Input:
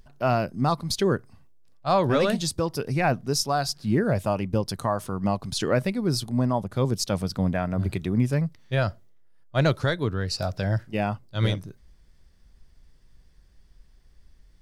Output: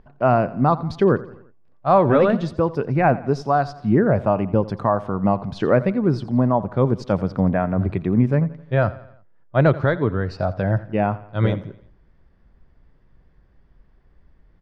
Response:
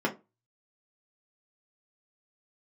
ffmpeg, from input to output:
-af "lowpass=1.5k,lowshelf=f=82:g=-8.5,aecho=1:1:86|172|258|344:0.126|0.0617|0.0302|0.0148,volume=7dB"

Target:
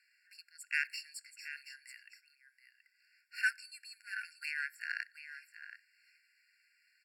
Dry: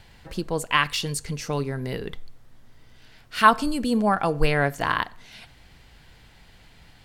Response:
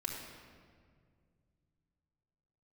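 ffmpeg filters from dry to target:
-af "aecho=1:1:727:0.335,aeval=exprs='0.841*(cos(1*acos(clip(val(0)/0.841,-1,1)))-cos(1*PI/2))+0.0531*(cos(7*acos(clip(val(0)/0.841,-1,1)))-cos(7*PI/2))':c=same,afftfilt=real='re*eq(mod(floor(b*sr/1024/1400),2),1)':imag='im*eq(mod(floor(b*sr/1024/1400),2),1)':win_size=1024:overlap=0.75,volume=-8dB"

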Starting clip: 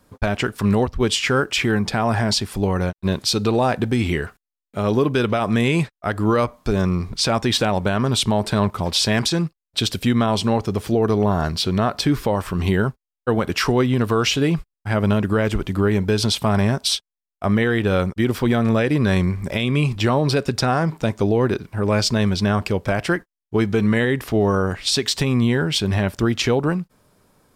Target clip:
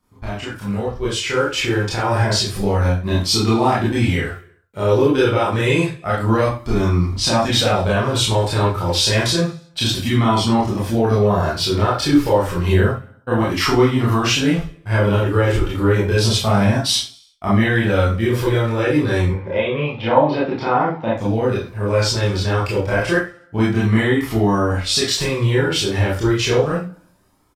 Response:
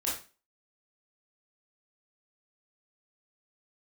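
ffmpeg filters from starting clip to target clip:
-filter_complex "[0:a]aecho=1:1:66|132|198|264|330:0.0891|0.0535|0.0321|0.0193|0.0116,flanger=delay=0.9:depth=1.4:regen=-46:speed=0.29:shape=sinusoidal,asettb=1/sr,asplit=3[a][b][c];[a]atrim=end=19.294[d];[b]atrim=start=19.29:end=21.16,asetpts=PTS-STARTPTS,afade=t=in:d=0.004:c=qsin,afade=t=out:st=1.866:d=0.004:c=qsin,highpass=110,equalizer=f=120:t=q:w=4:g=-6,equalizer=f=510:t=q:w=4:g=10,equalizer=f=880:t=q:w=4:g=9,lowpass=f=3.3k:w=0.5412,lowpass=f=3.3k:w=1.3066[e];[c]atrim=start=21.156[f];[d][e]acrossfade=d=0.004:c1=hsin:c2=qsin[g];[g][f]acrossfade=d=0.004:c1=qsin:c2=hsin,dynaudnorm=f=420:g=7:m=9.5dB[h];[1:a]atrim=start_sample=2205,atrim=end_sample=6174[i];[h][i]afir=irnorm=-1:irlink=0,volume=-6.5dB"

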